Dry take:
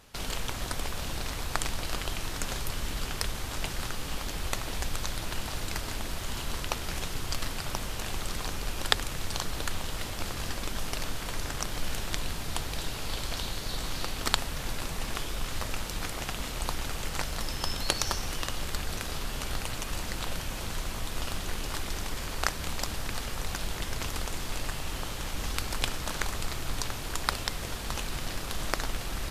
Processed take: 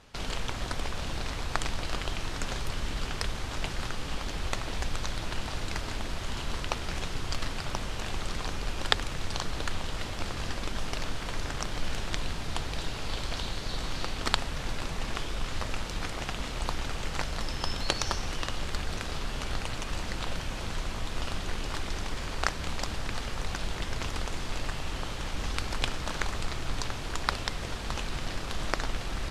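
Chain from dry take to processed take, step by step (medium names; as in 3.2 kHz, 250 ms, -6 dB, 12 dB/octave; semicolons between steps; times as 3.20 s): distance through air 63 m; trim +1 dB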